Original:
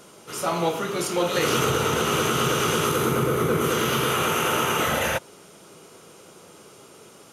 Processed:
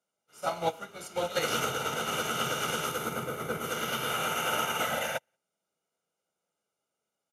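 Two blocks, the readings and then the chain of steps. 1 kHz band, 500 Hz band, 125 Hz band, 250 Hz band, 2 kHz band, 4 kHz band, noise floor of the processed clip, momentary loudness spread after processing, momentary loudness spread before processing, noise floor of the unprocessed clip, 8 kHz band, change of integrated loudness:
−7.0 dB, −10.0 dB, −14.0 dB, −13.5 dB, −6.5 dB, −6.5 dB, below −85 dBFS, 6 LU, 5 LU, −49 dBFS, −8.0 dB, −8.5 dB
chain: sub-octave generator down 2 octaves, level −6 dB
high-pass filter 200 Hz 12 dB per octave
comb filter 1.4 ms, depth 55%
single-tap delay 183 ms −19.5 dB
expander for the loud parts 2.5 to 1, over −42 dBFS
level −4 dB

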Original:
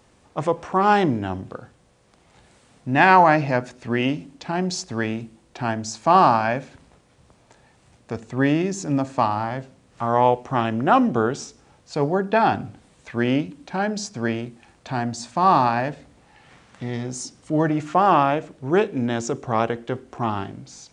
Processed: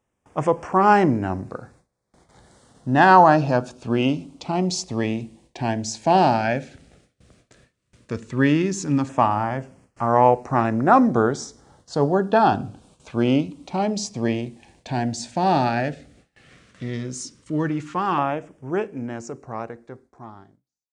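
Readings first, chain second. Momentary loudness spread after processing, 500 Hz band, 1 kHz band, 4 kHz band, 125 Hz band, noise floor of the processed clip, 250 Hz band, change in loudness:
17 LU, +0.5 dB, 0.0 dB, 0.0 dB, +1.0 dB, −75 dBFS, +1.0 dB, +0.5 dB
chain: fade-out on the ending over 5.19 s
auto-filter notch saw down 0.11 Hz 620–4,400 Hz
noise gate with hold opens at −45 dBFS
level +2 dB

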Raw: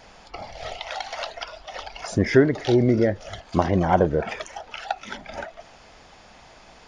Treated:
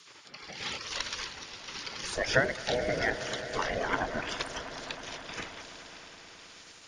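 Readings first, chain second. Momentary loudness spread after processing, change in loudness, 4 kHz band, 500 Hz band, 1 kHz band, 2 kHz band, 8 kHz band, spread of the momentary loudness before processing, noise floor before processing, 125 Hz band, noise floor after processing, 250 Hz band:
19 LU, −9.5 dB, +1.0 dB, −10.5 dB, −8.5 dB, 0.0 dB, +2.5 dB, 18 LU, −50 dBFS, −16.0 dB, −53 dBFS, −17.5 dB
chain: rotating-speaker cabinet horn 0.85 Hz
gate on every frequency bin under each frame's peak −15 dB weak
echo that builds up and dies away 106 ms, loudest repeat 5, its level −18 dB
level +6.5 dB

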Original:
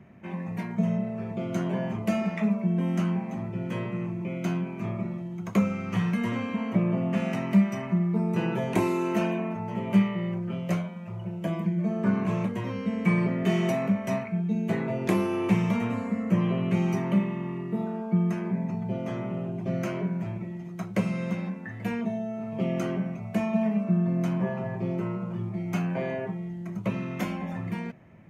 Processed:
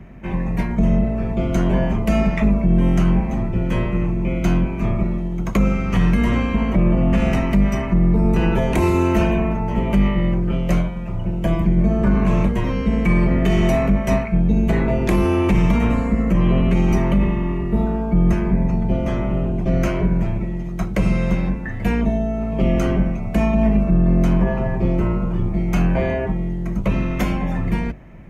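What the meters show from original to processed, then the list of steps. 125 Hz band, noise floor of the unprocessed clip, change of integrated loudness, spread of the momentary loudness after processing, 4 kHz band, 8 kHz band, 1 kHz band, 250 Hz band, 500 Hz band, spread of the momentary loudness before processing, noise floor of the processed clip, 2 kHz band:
+10.0 dB, −38 dBFS, +9.0 dB, 6 LU, +8.0 dB, can't be measured, +8.0 dB, +7.5 dB, +8.5 dB, 8 LU, −25 dBFS, +8.0 dB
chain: sub-octave generator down 2 octaves, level +1 dB
brickwall limiter −17 dBFS, peak gain reduction 10 dB
level +9 dB

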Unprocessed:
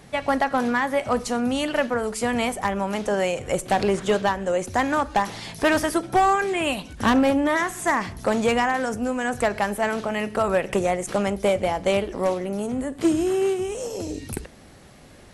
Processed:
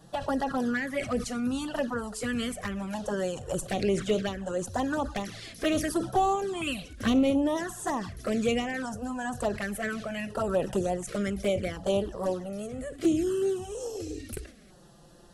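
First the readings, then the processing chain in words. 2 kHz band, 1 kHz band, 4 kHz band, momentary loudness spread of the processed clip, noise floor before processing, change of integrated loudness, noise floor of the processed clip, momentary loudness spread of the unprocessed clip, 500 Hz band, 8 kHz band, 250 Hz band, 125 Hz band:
−9.5 dB, −9.5 dB, −6.0 dB, 8 LU, −47 dBFS, −6.5 dB, −54 dBFS, 7 LU, −6.5 dB, −5.5 dB, −4.5 dB, −3.5 dB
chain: flanger swept by the level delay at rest 6.6 ms, full sweep at −16.5 dBFS
auto-filter notch square 0.68 Hz 910–2,200 Hz
level that may fall only so fast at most 130 dB per second
level −3 dB

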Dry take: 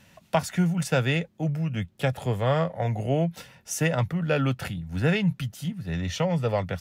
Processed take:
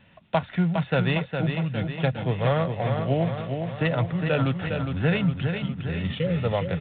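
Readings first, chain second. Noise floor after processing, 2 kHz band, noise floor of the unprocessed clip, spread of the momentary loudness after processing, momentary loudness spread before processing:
−51 dBFS, +1.0 dB, −60 dBFS, 5 LU, 8 LU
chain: healed spectral selection 0:05.88–0:06.37, 570–1,700 Hz
repeating echo 409 ms, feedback 57%, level −6 dB
IMA ADPCM 32 kbit/s 8,000 Hz

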